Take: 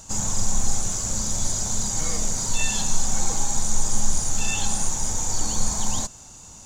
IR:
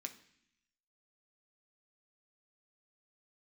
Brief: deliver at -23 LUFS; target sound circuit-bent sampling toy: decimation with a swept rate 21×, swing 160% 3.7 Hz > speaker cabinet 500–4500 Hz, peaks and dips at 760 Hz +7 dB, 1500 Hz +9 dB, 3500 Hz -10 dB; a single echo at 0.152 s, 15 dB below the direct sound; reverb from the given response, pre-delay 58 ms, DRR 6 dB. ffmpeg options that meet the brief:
-filter_complex "[0:a]aecho=1:1:152:0.178,asplit=2[a][b];[1:a]atrim=start_sample=2205,adelay=58[c];[b][c]afir=irnorm=-1:irlink=0,volume=-3dB[d];[a][d]amix=inputs=2:normalize=0,acrusher=samples=21:mix=1:aa=0.000001:lfo=1:lforange=33.6:lforate=3.7,highpass=500,equalizer=f=760:t=q:w=4:g=7,equalizer=f=1.5k:t=q:w=4:g=9,equalizer=f=3.5k:t=q:w=4:g=-10,lowpass=f=4.5k:w=0.5412,lowpass=f=4.5k:w=1.3066,volume=3dB"

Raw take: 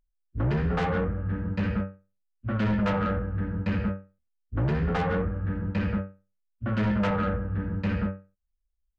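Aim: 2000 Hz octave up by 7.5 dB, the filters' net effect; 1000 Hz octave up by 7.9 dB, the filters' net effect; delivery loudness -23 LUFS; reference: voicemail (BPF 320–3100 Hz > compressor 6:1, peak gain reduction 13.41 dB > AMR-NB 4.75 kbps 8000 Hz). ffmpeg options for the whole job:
-af "highpass=320,lowpass=3.1k,equalizer=f=1k:t=o:g=8.5,equalizer=f=2k:t=o:g=7,acompressor=threshold=-33dB:ratio=6,volume=17.5dB" -ar 8000 -c:a libopencore_amrnb -b:a 4750

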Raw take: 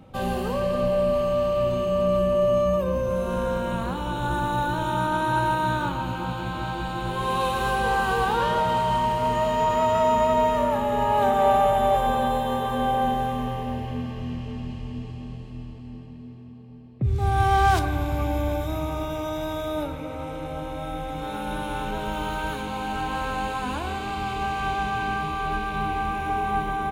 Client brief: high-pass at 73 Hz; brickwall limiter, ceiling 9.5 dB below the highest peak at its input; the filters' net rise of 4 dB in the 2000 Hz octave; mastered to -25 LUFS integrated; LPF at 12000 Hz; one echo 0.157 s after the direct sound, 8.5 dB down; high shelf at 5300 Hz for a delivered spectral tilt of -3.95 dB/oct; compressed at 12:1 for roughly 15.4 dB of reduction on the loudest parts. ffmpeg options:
-af "highpass=73,lowpass=12k,equalizer=f=2k:t=o:g=5,highshelf=f=5.3k:g=6.5,acompressor=threshold=-31dB:ratio=12,alimiter=level_in=6.5dB:limit=-24dB:level=0:latency=1,volume=-6.5dB,aecho=1:1:157:0.376,volume=12.5dB"

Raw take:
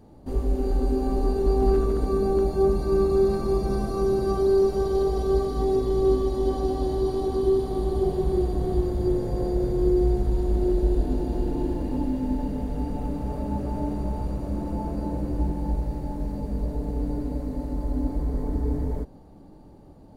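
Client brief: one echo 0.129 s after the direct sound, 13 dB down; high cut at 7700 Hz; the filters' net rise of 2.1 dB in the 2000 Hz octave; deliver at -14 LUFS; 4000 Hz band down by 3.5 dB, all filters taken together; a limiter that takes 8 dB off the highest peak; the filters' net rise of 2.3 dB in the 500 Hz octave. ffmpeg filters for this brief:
-af "lowpass=7.7k,equalizer=f=500:t=o:g=3.5,equalizer=f=2k:t=o:g=3.5,equalizer=f=4k:t=o:g=-4.5,alimiter=limit=-16.5dB:level=0:latency=1,aecho=1:1:129:0.224,volume=12dB"

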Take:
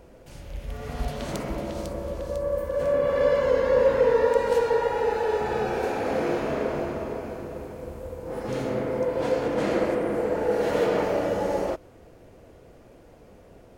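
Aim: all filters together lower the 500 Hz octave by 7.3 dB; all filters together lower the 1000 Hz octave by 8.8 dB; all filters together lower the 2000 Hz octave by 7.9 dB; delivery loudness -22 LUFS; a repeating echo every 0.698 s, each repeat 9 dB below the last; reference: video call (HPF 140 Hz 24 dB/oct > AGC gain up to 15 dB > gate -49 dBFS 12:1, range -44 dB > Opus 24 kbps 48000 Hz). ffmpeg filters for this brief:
-af "highpass=f=140:w=0.5412,highpass=f=140:w=1.3066,equalizer=f=500:t=o:g=-6,equalizer=f=1k:t=o:g=-7.5,equalizer=f=2k:t=o:g=-7,aecho=1:1:698|1396|2094|2792:0.355|0.124|0.0435|0.0152,dynaudnorm=m=15dB,agate=range=-44dB:threshold=-49dB:ratio=12,volume=6dB" -ar 48000 -c:a libopus -b:a 24k

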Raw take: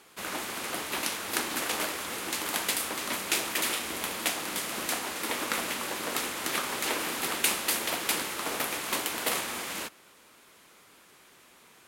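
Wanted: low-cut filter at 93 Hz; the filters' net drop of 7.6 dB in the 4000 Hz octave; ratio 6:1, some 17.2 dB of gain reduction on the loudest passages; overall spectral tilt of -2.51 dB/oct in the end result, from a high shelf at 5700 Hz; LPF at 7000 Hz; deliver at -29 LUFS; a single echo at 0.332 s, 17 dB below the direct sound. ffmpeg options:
-af "highpass=93,lowpass=7k,equalizer=f=4k:t=o:g=-6.5,highshelf=f=5.7k:g=-9,acompressor=threshold=-48dB:ratio=6,aecho=1:1:332:0.141,volume=20.5dB"

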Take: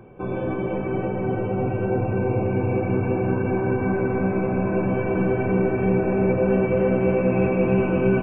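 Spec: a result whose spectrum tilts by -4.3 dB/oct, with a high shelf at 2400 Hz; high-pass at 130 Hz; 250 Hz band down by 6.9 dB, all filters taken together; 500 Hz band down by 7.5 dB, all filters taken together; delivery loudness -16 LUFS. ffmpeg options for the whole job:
-af "highpass=130,equalizer=f=250:t=o:g=-7.5,equalizer=f=500:t=o:g=-7,highshelf=f=2.4k:g=3.5,volume=12.5dB"

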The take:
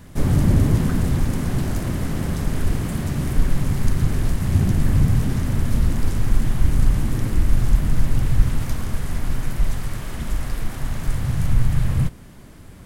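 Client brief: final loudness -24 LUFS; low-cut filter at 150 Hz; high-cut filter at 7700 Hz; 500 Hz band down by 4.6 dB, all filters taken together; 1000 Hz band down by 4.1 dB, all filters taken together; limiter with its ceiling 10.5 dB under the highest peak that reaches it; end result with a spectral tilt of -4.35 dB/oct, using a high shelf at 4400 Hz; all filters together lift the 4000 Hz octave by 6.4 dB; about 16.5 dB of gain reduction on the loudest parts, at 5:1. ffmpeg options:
-af "highpass=150,lowpass=7.7k,equalizer=f=500:t=o:g=-5.5,equalizer=f=1k:t=o:g=-4.5,equalizer=f=4k:t=o:g=4.5,highshelf=f=4.4k:g=8,acompressor=threshold=-38dB:ratio=5,volume=21dB,alimiter=limit=-15.5dB:level=0:latency=1"

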